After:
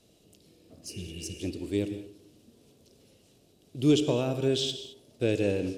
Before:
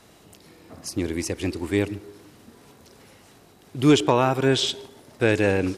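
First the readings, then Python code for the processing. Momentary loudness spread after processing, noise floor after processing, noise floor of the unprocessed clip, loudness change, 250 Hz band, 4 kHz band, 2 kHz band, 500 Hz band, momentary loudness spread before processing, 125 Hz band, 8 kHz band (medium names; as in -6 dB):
17 LU, -63 dBFS, -53 dBFS, -6.5 dB, -5.5 dB, -6.0 dB, -13.5 dB, -6.0 dB, 16 LU, -6.0 dB, -7.0 dB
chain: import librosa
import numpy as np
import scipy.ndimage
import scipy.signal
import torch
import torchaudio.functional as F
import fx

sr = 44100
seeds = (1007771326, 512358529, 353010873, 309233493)

p1 = fx.spec_repair(x, sr, seeds[0], start_s=0.92, length_s=0.43, low_hz=230.0, high_hz=3000.0, source='after')
p2 = fx.high_shelf(p1, sr, hz=11000.0, db=-4.5)
p3 = np.sign(p2) * np.maximum(np.abs(p2) - 10.0 ** (-37.0 / 20.0), 0.0)
p4 = p2 + (p3 * 10.0 ** (-9.0 / 20.0))
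p5 = fx.band_shelf(p4, sr, hz=1300.0, db=-13.5, octaves=1.7)
p6 = fx.rev_gated(p5, sr, seeds[1], gate_ms=240, shape='flat', drr_db=9.5)
y = p6 * 10.0 ** (-8.5 / 20.0)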